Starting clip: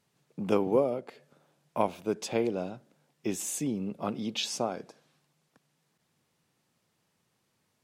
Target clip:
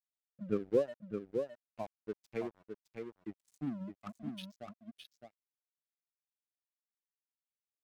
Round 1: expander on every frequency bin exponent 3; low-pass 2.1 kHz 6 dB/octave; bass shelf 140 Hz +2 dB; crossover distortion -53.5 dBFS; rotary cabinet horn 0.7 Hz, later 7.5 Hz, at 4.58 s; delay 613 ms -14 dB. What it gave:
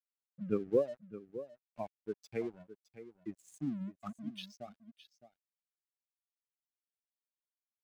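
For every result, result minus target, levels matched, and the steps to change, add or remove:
echo-to-direct -8 dB; crossover distortion: distortion -7 dB
change: delay 613 ms -6 dB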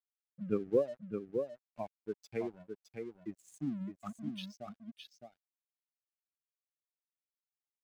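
crossover distortion: distortion -7 dB
change: crossover distortion -45 dBFS

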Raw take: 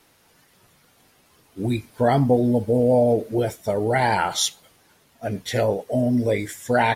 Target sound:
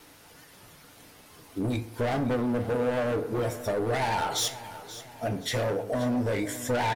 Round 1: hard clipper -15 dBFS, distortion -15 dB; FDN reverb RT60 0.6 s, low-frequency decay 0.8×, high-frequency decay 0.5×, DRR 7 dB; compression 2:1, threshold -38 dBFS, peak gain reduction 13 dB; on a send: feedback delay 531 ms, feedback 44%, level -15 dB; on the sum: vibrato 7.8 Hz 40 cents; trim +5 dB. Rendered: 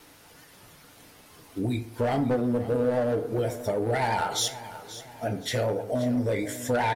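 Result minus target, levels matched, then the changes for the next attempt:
hard clipper: distortion -8 dB
change: hard clipper -21.5 dBFS, distortion -7 dB

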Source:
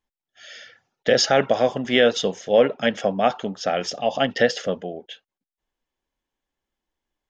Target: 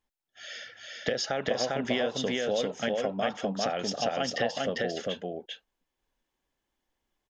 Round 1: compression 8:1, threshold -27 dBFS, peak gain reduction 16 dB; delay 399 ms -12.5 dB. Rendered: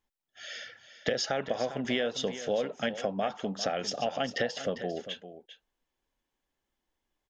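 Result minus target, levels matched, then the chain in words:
echo-to-direct -11 dB
compression 8:1, threshold -27 dBFS, peak gain reduction 16 dB; delay 399 ms -1.5 dB

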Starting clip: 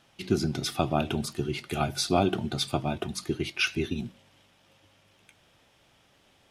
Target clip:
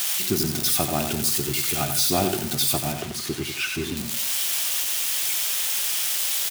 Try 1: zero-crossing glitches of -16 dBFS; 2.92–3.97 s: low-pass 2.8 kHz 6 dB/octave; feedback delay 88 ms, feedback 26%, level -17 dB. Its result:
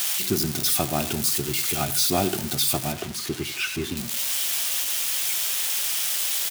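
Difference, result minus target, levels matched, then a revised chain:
echo-to-direct -9.5 dB
zero-crossing glitches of -16 dBFS; 2.92–3.97 s: low-pass 2.8 kHz 6 dB/octave; feedback delay 88 ms, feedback 26%, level -7.5 dB

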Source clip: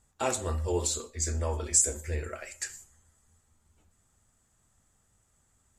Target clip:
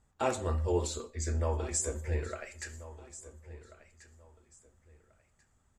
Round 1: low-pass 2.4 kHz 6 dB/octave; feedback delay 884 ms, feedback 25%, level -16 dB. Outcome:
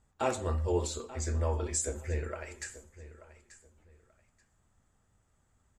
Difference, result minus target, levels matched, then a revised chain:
echo 503 ms early
low-pass 2.4 kHz 6 dB/octave; feedback delay 1387 ms, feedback 25%, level -16 dB

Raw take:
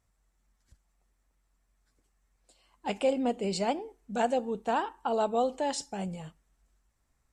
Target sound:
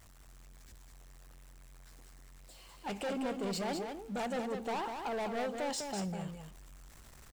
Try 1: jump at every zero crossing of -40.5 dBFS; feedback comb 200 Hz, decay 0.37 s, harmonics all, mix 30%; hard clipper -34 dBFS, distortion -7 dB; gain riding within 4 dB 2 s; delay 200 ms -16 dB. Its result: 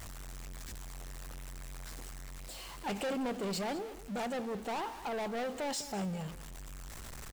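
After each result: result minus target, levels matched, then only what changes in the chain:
echo-to-direct -10 dB; jump at every zero crossing: distortion +8 dB
change: delay 200 ms -6 dB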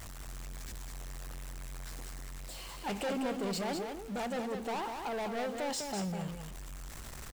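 jump at every zero crossing: distortion +8 dB
change: jump at every zero crossing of -49 dBFS

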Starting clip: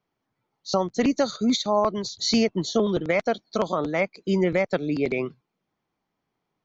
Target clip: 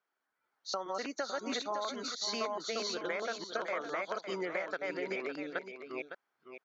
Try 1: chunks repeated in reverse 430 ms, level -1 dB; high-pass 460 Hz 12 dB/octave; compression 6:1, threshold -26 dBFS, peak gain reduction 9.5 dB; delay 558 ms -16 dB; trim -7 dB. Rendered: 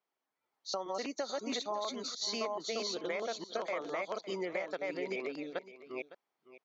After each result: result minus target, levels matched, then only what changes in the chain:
echo-to-direct -6.5 dB; 2 kHz band -3.0 dB
change: delay 558 ms -9.5 dB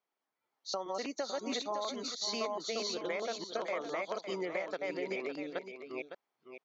2 kHz band -3.0 dB
add after high-pass: peaking EQ 1.5 kHz +12 dB 0.5 oct

